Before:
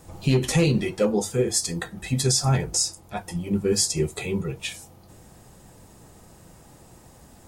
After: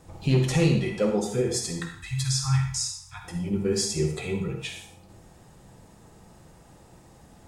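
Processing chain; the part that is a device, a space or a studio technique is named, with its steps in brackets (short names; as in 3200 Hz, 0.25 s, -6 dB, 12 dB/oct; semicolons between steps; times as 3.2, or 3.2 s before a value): 1.8–3.24 elliptic band-stop 130–1000 Hz, stop band 40 dB; high shelf 9000 Hz -10.5 dB; bathroom (reverb RT60 0.60 s, pre-delay 46 ms, DRR 4 dB); gain -3 dB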